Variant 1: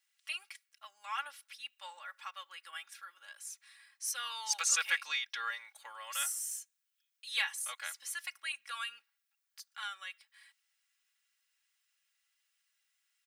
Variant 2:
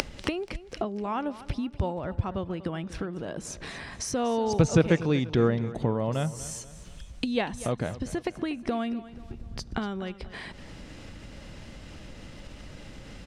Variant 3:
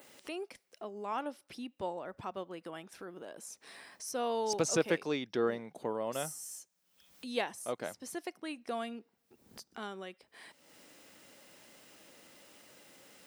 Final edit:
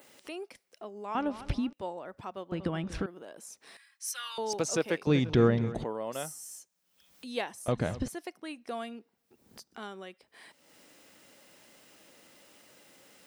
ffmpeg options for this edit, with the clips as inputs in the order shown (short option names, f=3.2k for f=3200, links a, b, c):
-filter_complex "[1:a]asplit=4[a][b][c][d];[2:a]asplit=6[e][f][g][h][i][j];[e]atrim=end=1.152[k];[a]atrim=start=1.148:end=1.732[l];[f]atrim=start=1.728:end=2.522[m];[b]atrim=start=2.518:end=3.062[n];[g]atrim=start=3.058:end=3.772[o];[0:a]atrim=start=3.768:end=4.382[p];[h]atrim=start=4.378:end=5.072[q];[c]atrim=start=5.068:end=5.842[r];[i]atrim=start=5.838:end=7.682[s];[d]atrim=start=7.678:end=8.082[t];[j]atrim=start=8.078[u];[k][l]acrossfade=d=0.004:c1=hsin:c2=hsin[v];[v][m]acrossfade=d=0.004:c1=hsin:c2=hsin[w];[w][n]acrossfade=d=0.004:c1=hsin:c2=hsin[x];[x][o]acrossfade=d=0.004:c1=hsin:c2=hsin[y];[y][p]acrossfade=d=0.004:c1=hsin:c2=hsin[z];[z][q]acrossfade=d=0.004:c1=hsin:c2=hsin[aa];[aa][r]acrossfade=d=0.004:c1=hsin:c2=hsin[ab];[ab][s]acrossfade=d=0.004:c1=hsin:c2=hsin[ac];[ac][t]acrossfade=d=0.004:c1=hsin:c2=hsin[ad];[ad][u]acrossfade=d=0.004:c1=hsin:c2=hsin"